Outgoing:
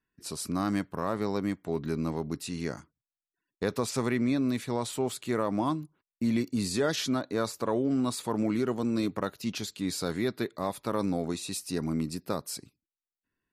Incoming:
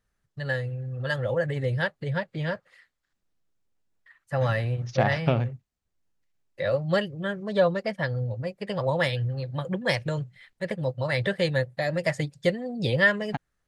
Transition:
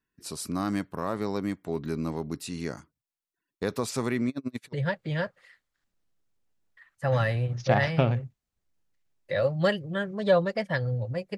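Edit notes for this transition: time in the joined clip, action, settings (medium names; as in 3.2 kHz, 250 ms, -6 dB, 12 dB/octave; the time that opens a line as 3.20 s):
outgoing
4.29–4.73 s: logarithmic tremolo 11 Hz, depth 37 dB
4.73 s: go over to incoming from 2.02 s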